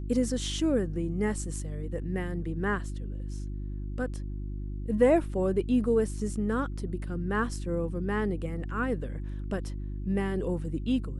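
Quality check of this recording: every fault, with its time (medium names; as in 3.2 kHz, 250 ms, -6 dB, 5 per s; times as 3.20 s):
hum 50 Hz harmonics 7 -35 dBFS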